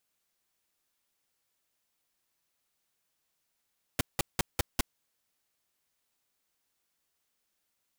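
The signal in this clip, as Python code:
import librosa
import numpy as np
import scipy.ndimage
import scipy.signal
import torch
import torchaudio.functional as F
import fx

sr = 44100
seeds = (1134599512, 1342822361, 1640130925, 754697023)

y = fx.noise_burst(sr, seeds[0], colour='pink', on_s=0.02, off_s=0.18, bursts=5, level_db=-25.5)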